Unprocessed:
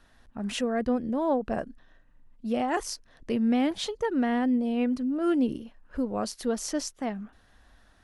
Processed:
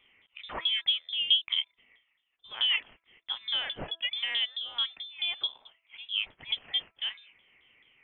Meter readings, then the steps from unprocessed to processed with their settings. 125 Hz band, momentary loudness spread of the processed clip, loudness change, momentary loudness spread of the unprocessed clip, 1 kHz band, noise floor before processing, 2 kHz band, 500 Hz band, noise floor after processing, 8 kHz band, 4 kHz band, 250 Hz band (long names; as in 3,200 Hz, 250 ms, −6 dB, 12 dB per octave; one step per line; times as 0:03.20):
can't be measured, 14 LU, −1.0 dB, 14 LU, −13.5 dB, −61 dBFS, +3.0 dB, −22.5 dB, −79 dBFS, below −40 dB, +15.0 dB, −32.0 dB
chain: auto-filter high-pass saw up 4.6 Hz 440–1,700 Hz
voice inversion scrambler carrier 3,800 Hz
hum removal 331.1 Hz, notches 5
level −2 dB